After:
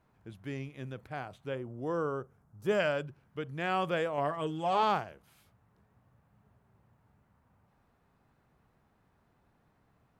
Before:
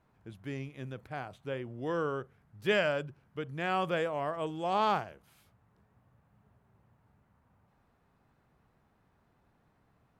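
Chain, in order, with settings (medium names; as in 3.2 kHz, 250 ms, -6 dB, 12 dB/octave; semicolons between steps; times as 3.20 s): 1.55–2.80 s: high-order bell 2.8 kHz -10.5 dB; 4.17–4.83 s: comb 7 ms, depth 57%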